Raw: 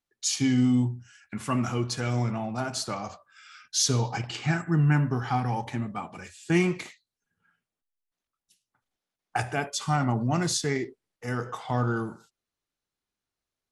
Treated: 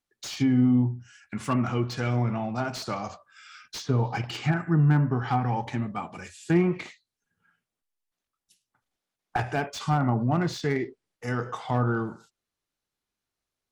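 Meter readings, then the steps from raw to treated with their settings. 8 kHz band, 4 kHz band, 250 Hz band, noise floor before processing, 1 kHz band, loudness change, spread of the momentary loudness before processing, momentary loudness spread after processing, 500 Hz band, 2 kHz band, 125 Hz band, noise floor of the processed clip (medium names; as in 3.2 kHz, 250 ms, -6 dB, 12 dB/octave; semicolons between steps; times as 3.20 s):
-12.5 dB, -5.5 dB, +1.5 dB, under -85 dBFS, +1.0 dB, +0.5 dB, 14 LU, 15 LU, +1.5 dB, -1.0 dB, +1.5 dB, under -85 dBFS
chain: low-pass that closes with the level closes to 1.4 kHz, closed at -20 dBFS; slew-rate limiter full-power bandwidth 78 Hz; trim +1.5 dB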